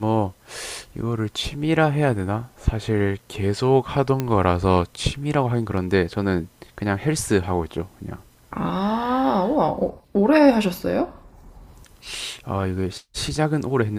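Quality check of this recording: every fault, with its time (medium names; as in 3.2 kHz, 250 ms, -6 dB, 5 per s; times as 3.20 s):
4.20 s: pop -10 dBFS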